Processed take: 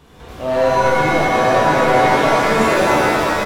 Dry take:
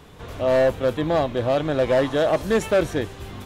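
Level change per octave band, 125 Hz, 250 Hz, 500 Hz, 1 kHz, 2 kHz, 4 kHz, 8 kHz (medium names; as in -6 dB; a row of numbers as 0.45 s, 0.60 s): +4.5 dB, +5.5 dB, +4.0 dB, +14.5 dB, +13.0 dB, +8.5 dB, no reading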